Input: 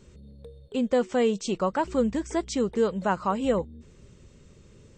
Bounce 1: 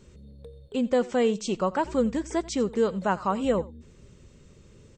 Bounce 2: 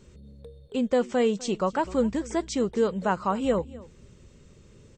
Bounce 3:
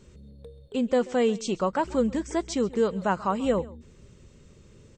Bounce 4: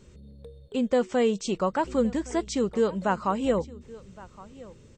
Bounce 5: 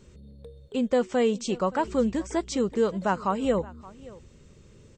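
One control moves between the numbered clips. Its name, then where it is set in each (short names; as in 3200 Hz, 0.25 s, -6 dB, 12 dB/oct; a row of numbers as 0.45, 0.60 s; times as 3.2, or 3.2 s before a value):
echo, time: 88, 251, 135, 1116, 573 ms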